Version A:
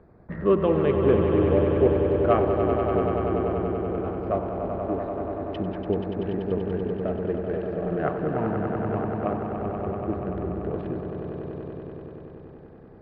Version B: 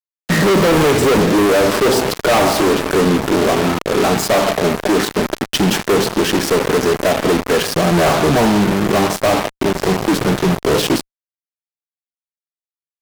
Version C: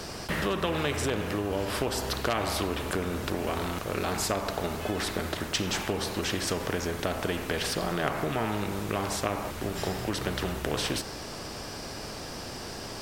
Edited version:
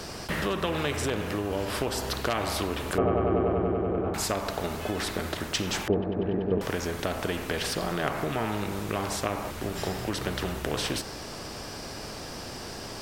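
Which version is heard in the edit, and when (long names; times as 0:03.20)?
C
0:02.98–0:04.14: punch in from A
0:05.88–0:06.61: punch in from A
not used: B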